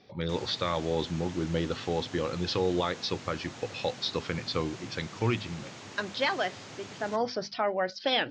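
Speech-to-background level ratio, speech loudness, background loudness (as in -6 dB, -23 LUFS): 13.0 dB, -31.5 LUFS, -44.5 LUFS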